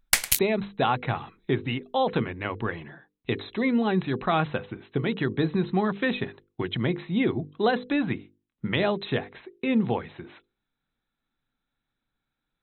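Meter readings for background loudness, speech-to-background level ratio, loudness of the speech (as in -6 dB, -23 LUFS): -23.5 LUFS, -4.0 dB, -27.5 LUFS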